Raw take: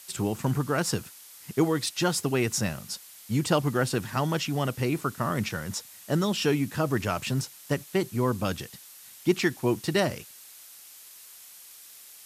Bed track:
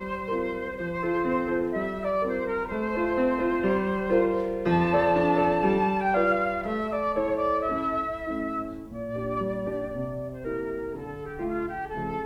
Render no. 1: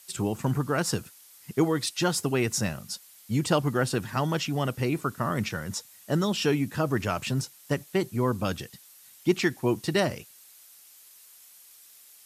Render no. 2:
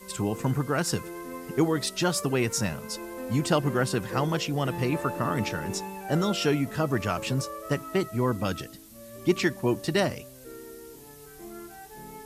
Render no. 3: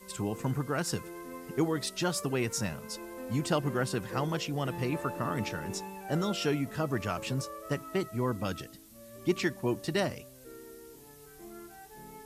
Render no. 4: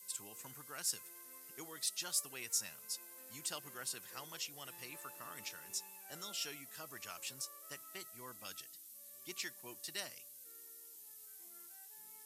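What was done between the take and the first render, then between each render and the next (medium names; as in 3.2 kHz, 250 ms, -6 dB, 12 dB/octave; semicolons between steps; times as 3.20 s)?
noise reduction 6 dB, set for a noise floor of -49 dBFS
add bed track -13 dB
trim -5 dB
high-pass 66 Hz; pre-emphasis filter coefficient 0.97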